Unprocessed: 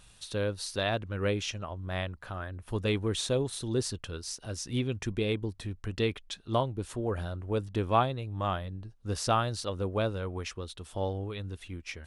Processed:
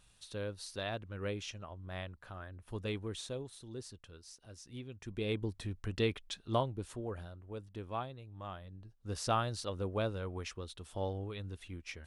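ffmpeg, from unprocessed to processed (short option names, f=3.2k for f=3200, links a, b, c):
-af "volume=12.5dB,afade=t=out:st=2.89:d=0.69:silence=0.473151,afade=t=in:st=5.01:d=0.41:silence=0.237137,afade=t=out:st=6.45:d=0.91:silence=0.281838,afade=t=in:st=8.56:d=0.79:silence=0.354813"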